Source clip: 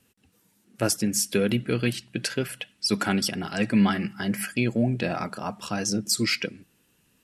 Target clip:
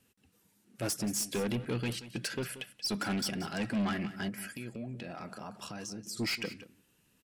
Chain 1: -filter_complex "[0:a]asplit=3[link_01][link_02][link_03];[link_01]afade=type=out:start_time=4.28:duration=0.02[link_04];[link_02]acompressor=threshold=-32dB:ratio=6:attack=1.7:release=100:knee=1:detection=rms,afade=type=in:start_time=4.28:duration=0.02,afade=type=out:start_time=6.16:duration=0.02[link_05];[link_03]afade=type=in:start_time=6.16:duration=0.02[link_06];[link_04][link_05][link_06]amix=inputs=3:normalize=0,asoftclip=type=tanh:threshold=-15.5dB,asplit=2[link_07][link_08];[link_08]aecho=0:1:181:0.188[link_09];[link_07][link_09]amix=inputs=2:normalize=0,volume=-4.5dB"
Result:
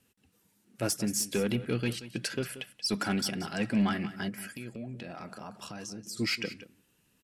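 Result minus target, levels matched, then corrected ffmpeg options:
soft clipping: distortion −9 dB
-filter_complex "[0:a]asplit=3[link_01][link_02][link_03];[link_01]afade=type=out:start_time=4.28:duration=0.02[link_04];[link_02]acompressor=threshold=-32dB:ratio=6:attack=1.7:release=100:knee=1:detection=rms,afade=type=in:start_time=4.28:duration=0.02,afade=type=out:start_time=6.16:duration=0.02[link_05];[link_03]afade=type=in:start_time=6.16:duration=0.02[link_06];[link_04][link_05][link_06]amix=inputs=3:normalize=0,asoftclip=type=tanh:threshold=-23.5dB,asplit=2[link_07][link_08];[link_08]aecho=0:1:181:0.188[link_09];[link_07][link_09]amix=inputs=2:normalize=0,volume=-4.5dB"

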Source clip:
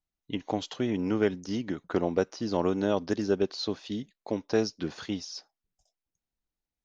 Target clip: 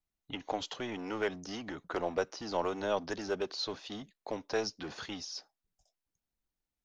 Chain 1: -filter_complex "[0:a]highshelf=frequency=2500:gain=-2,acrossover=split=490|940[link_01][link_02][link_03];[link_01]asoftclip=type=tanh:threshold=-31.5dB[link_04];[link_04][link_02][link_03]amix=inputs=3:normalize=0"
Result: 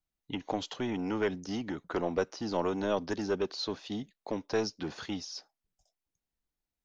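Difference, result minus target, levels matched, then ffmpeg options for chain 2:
soft clipping: distortion −5 dB
-filter_complex "[0:a]highshelf=frequency=2500:gain=-2,acrossover=split=490|940[link_01][link_02][link_03];[link_01]asoftclip=type=tanh:threshold=-43dB[link_04];[link_04][link_02][link_03]amix=inputs=3:normalize=0"

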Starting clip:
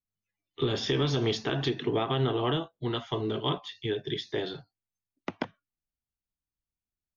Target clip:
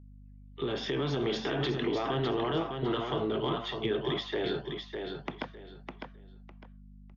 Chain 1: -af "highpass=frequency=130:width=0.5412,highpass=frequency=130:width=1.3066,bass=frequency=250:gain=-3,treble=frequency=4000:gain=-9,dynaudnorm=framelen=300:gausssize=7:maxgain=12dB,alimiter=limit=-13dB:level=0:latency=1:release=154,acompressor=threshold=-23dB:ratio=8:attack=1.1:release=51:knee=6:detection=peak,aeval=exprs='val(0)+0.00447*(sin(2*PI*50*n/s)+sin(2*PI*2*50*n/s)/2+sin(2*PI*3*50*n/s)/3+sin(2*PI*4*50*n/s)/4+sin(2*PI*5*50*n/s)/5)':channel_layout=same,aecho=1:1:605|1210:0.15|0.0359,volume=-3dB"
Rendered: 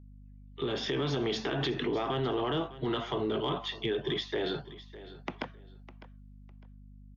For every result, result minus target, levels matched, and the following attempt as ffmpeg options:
echo-to-direct −11 dB; 8,000 Hz band +3.5 dB
-af "highpass=frequency=130:width=0.5412,highpass=frequency=130:width=1.3066,bass=frequency=250:gain=-3,treble=frequency=4000:gain=-9,dynaudnorm=framelen=300:gausssize=7:maxgain=12dB,alimiter=limit=-13dB:level=0:latency=1:release=154,acompressor=threshold=-23dB:ratio=8:attack=1.1:release=51:knee=6:detection=peak,aeval=exprs='val(0)+0.00447*(sin(2*PI*50*n/s)+sin(2*PI*2*50*n/s)/2+sin(2*PI*3*50*n/s)/3+sin(2*PI*4*50*n/s)/4+sin(2*PI*5*50*n/s)/5)':channel_layout=same,aecho=1:1:605|1210|1815:0.531|0.127|0.0306,volume=-3dB"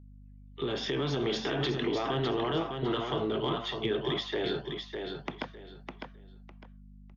8,000 Hz band +3.5 dB
-af "highpass=frequency=130:width=0.5412,highpass=frequency=130:width=1.3066,bass=frequency=250:gain=-3,treble=frequency=4000:gain=-9,dynaudnorm=framelen=300:gausssize=7:maxgain=12dB,alimiter=limit=-13dB:level=0:latency=1:release=154,acompressor=threshold=-23dB:ratio=8:attack=1.1:release=51:knee=6:detection=peak,highshelf=frequency=5500:gain=-7,aeval=exprs='val(0)+0.00447*(sin(2*PI*50*n/s)+sin(2*PI*2*50*n/s)/2+sin(2*PI*3*50*n/s)/3+sin(2*PI*4*50*n/s)/4+sin(2*PI*5*50*n/s)/5)':channel_layout=same,aecho=1:1:605|1210|1815:0.531|0.127|0.0306,volume=-3dB"

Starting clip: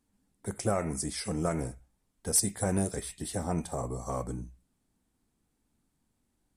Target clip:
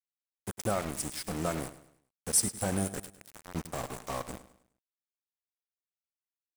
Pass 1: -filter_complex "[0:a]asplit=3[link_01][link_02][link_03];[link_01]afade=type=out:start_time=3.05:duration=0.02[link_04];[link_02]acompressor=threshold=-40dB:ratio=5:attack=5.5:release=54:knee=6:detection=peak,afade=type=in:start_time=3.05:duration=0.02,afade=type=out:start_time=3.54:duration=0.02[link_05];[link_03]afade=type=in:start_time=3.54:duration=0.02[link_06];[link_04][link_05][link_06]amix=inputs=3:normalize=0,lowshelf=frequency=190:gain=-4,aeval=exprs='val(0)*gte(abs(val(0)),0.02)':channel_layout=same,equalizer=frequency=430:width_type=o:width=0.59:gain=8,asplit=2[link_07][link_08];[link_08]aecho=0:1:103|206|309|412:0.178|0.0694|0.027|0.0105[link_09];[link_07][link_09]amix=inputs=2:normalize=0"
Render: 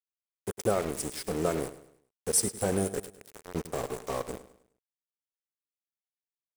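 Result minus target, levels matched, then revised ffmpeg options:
500 Hz band +5.0 dB
-filter_complex "[0:a]asplit=3[link_01][link_02][link_03];[link_01]afade=type=out:start_time=3.05:duration=0.02[link_04];[link_02]acompressor=threshold=-40dB:ratio=5:attack=5.5:release=54:knee=6:detection=peak,afade=type=in:start_time=3.05:duration=0.02,afade=type=out:start_time=3.54:duration=0.02[link_05];[link_03]afade=type=in:start_time=3.54:duration=0.02[link_06];[link_04][link_05][link_06]amix=inputs=3:normalize=0,lowshelf=frequency=190:gain=-4,aeval=exprs='val(0)*gte(abs(val(0)),0.02)':channel_layout=same,equalizer=frequency=430:width_type=o:width=0.59:gain=-3.5,asplit=2[link_07][link_08];[link_08]aecho=0:1:103|206|309|412:0.178|0.0694|0.027|0.0105[link_09];[link_07][link_09]amix=inputs=2:normalize=0"

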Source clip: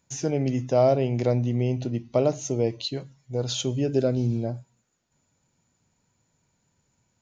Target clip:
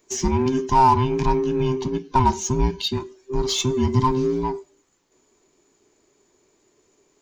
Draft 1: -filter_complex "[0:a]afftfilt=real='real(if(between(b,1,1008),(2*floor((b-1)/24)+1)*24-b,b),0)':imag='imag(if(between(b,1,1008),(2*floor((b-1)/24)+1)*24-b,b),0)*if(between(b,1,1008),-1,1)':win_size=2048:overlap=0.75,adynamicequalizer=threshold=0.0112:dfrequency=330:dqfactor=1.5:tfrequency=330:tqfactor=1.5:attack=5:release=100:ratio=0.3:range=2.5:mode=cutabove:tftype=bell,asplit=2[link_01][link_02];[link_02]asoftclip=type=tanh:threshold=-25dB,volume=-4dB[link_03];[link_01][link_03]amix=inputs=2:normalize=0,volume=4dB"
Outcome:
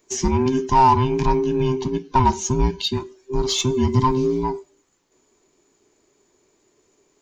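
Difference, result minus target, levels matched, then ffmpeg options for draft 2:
soft clipping: distortion −4 dB
-filter_complex "[0:a]afftfilt=real='real(if(between(b,1,1008),(2*floor((b-1)/24)+1)*24-b,b),0)':imag='imag(if(between(b,1,1008),(2*floor((b-1)/24)+1)*24-b,b),0)*if(between(b,1,1008),-1,1)':win_size=2048:overlap=0.75,adynamicequalizer=threshold=0.0112:dfrequency=330:dqfactor=1.5:tfrequency=330:tqfactor=1.5:attack=5:release=100:ratio=0.3:range=2.5:mode=cutabove:tftype=bell,asplit=2[link_01][link_02];[link_02]asoftclip=type=tanh:threshold=-33.5dB,volume=-4dB[link_03];[link_01][link_03]amix=inputs=2:normalize=0,volume=4dB"

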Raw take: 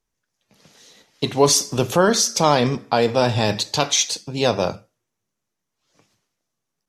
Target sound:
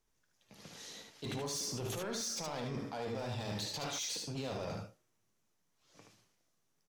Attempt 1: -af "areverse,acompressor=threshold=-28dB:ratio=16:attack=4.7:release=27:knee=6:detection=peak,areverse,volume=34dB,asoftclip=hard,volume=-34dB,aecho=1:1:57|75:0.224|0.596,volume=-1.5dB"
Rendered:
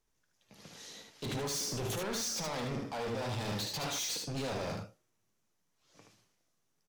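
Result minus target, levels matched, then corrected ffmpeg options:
downward compressor: peak gain reduction −8.5 dB
-af "areverse,acompressor=threshold=-37dB:ratio=16:attack=4.7:release=27:knee=6:detection=peak,areverse,volume=34dB,asoftclip=hard,volume=-34dB,aecho=1:1:57|75:0.224|0.596,volume=-1.5dB"

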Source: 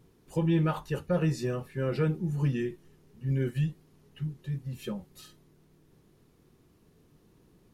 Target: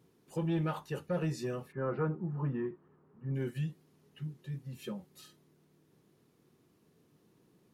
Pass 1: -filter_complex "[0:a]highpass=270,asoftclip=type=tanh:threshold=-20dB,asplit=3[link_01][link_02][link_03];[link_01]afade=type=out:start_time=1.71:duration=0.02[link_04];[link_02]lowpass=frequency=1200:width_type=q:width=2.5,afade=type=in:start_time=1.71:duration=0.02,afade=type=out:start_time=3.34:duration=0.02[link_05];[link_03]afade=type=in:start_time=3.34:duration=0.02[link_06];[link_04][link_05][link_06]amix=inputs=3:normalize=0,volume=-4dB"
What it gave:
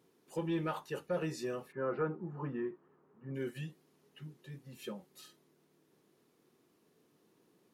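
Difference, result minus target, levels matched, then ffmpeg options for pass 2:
125 Hz band −6.0 dB
-filter_complex "[0:a]highpass=130,asoftclip=type=tanh:threshold=-20dB,asplit=3[link_01][link_02][link_03];[link_01]afade=type=out:start_time=1.71:duration=0.02[link_04];[link_02]lowpass=frequency=1200:width_type=q:width=2.5,afade=type=in:start_time=1.71:duration=0.02,afade=type=out:start_time=3.34:duration=0.02[link_05];[link_03]afade=type=in:start_time=3.34:duration=0.02[link_06];[link_04][link_05][link_06]amix=inputs=3:normalize=0,volume=-4dB"

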